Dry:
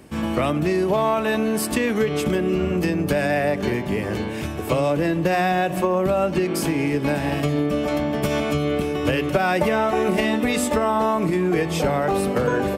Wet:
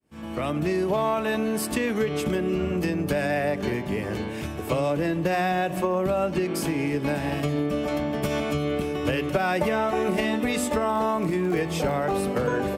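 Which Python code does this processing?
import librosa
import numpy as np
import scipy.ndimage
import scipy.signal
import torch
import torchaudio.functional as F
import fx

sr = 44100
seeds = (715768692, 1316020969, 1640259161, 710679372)

y = fx.fade_in_head(x, sr, length_s=0.59)
y = fx.dmg_crackle(y, sr, seeds[0], per_s=58.0, level_db=-28.0, at=(10.87, 11.92), fade=0.02)
y = y * 10.0 ** (-4.0 / 20.0)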